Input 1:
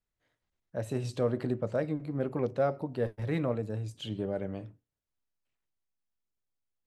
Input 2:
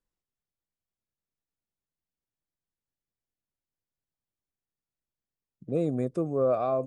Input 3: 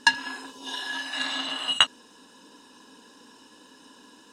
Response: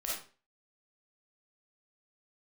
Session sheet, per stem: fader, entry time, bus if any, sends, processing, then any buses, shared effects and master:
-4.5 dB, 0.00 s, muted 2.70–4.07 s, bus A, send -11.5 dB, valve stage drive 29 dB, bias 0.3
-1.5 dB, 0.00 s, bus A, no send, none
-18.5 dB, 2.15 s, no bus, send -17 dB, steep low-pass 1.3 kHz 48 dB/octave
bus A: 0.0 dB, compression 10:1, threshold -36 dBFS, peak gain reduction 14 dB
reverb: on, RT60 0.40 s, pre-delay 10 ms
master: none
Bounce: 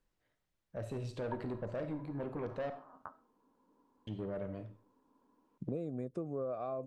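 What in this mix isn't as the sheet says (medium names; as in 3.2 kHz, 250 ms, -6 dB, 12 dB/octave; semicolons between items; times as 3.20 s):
stem 2 -1.5 dB -> +7.5 dB; stem 3: entry 2.15 s -> 1.25 s; master: extra treble shelf 5.8 kHz -10 dB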